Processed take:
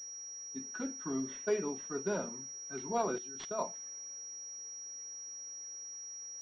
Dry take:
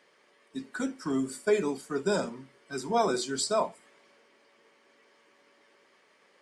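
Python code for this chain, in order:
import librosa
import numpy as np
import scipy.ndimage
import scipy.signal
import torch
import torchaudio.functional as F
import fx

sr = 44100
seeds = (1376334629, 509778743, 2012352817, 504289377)

y = fx.level_steps(x, sr, step_db=15, at=(3.18, 3.59))
y = fx.pwm(y, sr, carrier_hz=5700.0)
y = F.gain(torch.from_numpy(y), -7.0).numpy()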